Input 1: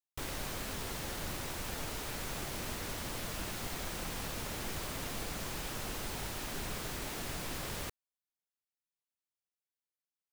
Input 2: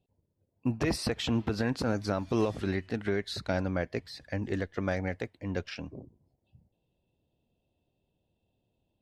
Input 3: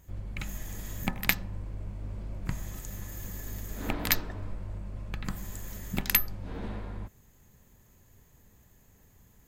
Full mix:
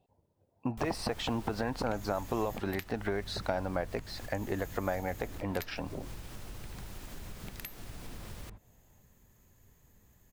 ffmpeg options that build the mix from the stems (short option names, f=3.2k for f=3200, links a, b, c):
-filter_complex "[0:a]lowshelf=f=170:g=11,adelay=600,volume=1dB[a];[1:a]equalizer=f=840:w=1:g=12,acompressor=threshold=-35dB:ratio=2.5,volume=1.5dB,asplit=2[b][c];[2:a]adelay=1500,volume=-3.5dB[d];[c]apad=whole_len=481763[e];[a][e]sidechaincompress=threshold=-49dB:ratio=4:attack=22:release=142[f];[f][d]amix=inputs=2:normalize=0,acompressor=threshold=-41dB:ratio=6,volume=0dB[g];[b][g]amix=inputs=2:normalize=0"